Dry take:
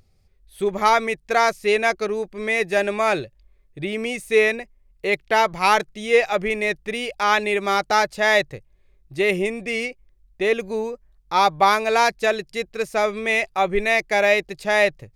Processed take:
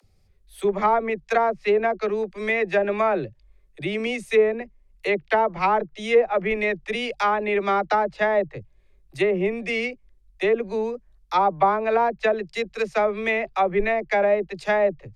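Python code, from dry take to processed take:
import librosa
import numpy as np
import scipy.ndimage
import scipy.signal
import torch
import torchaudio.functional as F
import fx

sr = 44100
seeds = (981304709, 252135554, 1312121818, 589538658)

y = fx.dispersion(x, sr, late='lows', ms=46.0, hz=310.0)
y = fx.env_lowpass_down(y, sr, base_hz=910.0, full_db=-14.5)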